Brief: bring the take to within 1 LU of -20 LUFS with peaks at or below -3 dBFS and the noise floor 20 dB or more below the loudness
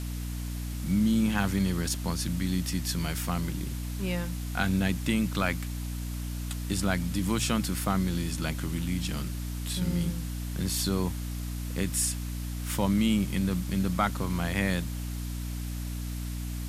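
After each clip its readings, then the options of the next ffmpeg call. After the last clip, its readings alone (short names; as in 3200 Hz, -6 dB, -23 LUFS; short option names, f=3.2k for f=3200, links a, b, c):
hum 60 Hz; harmonics up to 300 Hz; hum level -32 dBFS; noise floor -34 dBFS; noise floor target -50 dBFS; loudness -30.0 LUFS; peak -11.5 dBFS; loudness target -20.0 LUFS
-> -af "bandreject=f=60:t=h:w=4,bandreject=f=120:t=h:w=4,bandreject=f=180:t=h:w=4,bandreject=f=240:t=h:w=4,bandreject=f=300:t=h:w=4"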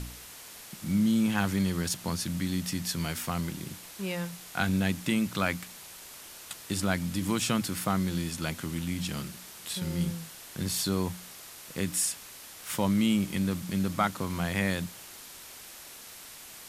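hum none; noise floor -47 dBFS; noise floor target -51 dBFS
-> -af "afftdn=nr=6:nf=-47"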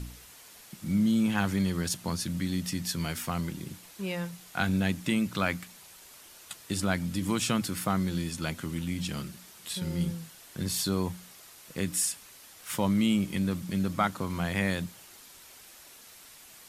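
noise floor -52 dBFS; loudness -30.5 LUFS; peak -12.0 dBFS; loudness target -20.0 LUFS
-> -af "volume=10.5dB,alimiter=limit=-3dB:level=0:latency=1"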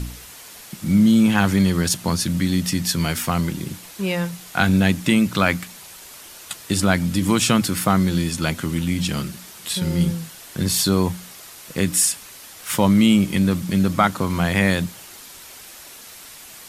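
loudness -20.0 LUFS; peak -3.0 dBFS; noise floor -41 dBFS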